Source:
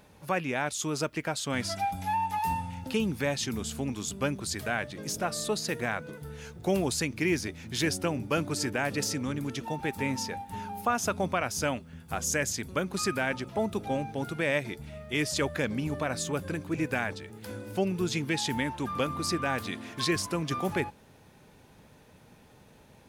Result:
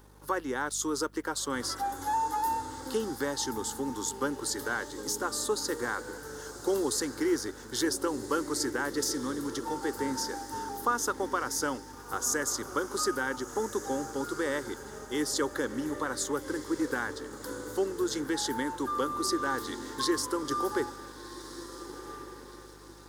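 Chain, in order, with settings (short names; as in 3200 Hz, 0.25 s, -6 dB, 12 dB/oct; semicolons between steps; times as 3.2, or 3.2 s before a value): HPF 180 Hz 12 dB/oct; fixed phaser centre 660 Hz, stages 6; in parallel at -2 dB: compressor, threshold -36 dBFS, peak gain reduction 11.5 dB; on the sum: hum 50 Hz, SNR 20 dB; on a send: diffused feedback echo 1.433 s, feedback 44%, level -12 dB; on the sum: crossover distortion -57.5 dBFS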